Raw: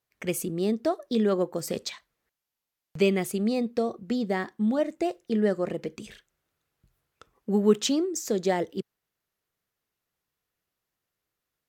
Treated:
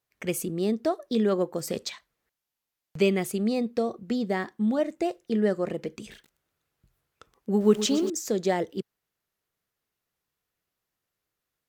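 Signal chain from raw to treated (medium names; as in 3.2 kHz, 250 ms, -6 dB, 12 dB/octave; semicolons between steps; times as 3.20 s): 5.99–8.10 s: bit-crushed delay 122 ms, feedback 80%, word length 7-bit, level -13 dB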